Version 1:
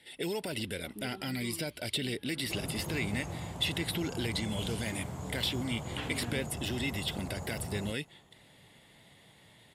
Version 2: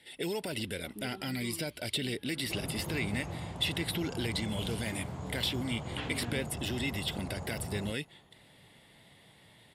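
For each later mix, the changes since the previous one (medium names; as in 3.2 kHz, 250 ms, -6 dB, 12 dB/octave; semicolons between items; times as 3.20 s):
second sound: add low-pass 5.1 kHz 12 dB/octave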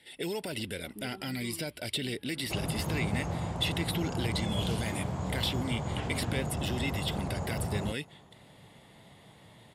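first sound: add distance through air 280 m; second sound +6.5 dB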